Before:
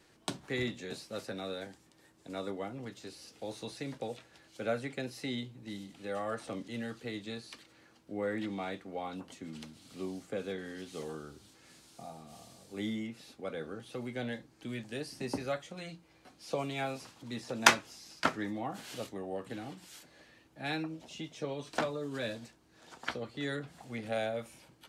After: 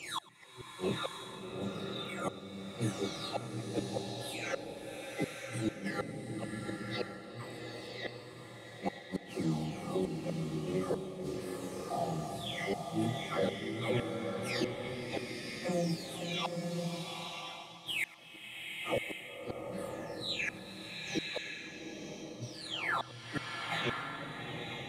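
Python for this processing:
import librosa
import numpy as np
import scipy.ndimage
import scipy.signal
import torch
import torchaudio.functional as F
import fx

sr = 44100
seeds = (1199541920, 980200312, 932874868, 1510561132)

p1 = fx.spec_delay(x, sr, highs='early', ms=879)
p2 = fx.highpass(p1, sr, hz=55.0, slope=6)
p3 = fx.high_shelf(p2, sr, hz=2300.0, db=-8.0)
p4 = fx.notch(p3, sr, hz=1500.0, q=5.9)
p5 = fx.over_compress(p4, sr, threshold_db=-43.0, ratio=-0.5)
p6 = p4 + (p5 * 10.0 ** (1.5 / 20.0))
p7 = fx.doubler(p6, sr, ms=25.0, db=-6)
p8 = fx.gate_flip(p7, sr, shuts_db=-28.0, range_db=-35)
p9 = p8 + fx.echo_single(p8, sr, ms=103, db=-22.0, dry=0)
p10 = fx.rev_bloom(p9, sr, seeds[0], attack_ms=1030, drr_db=1.5)
y = p10 * 10.0 ** (5.5 / 20.0)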